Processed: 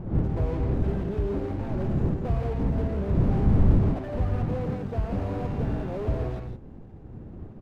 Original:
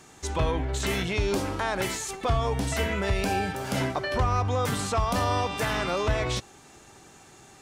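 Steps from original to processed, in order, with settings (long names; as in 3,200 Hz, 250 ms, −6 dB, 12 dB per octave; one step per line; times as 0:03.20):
running median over 41 samples
wind on the microphone 180 Hz −27 dBFS
low-pass filter 1,800 Hz 6 dB per octave
loudspeakers that aren't time-aligned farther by 40 metres −12 dB, 57 metres −8 dB
slew-rate limiting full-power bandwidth 19 Hz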